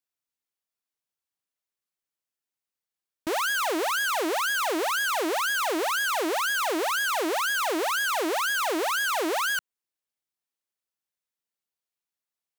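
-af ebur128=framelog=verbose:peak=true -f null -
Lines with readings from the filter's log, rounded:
Integrated loudness:
  I:         -25.4 LUFS
  Threshold: -35.5 LUFS
Loudness range:
  LRA:         8.2 LU
  Threshold: -46.9 LUFS
  LRA low:   -33.5 LUFS
  LRA high:  -25.2 LUFS
True peak:
  Peak:      -19.7 dBFS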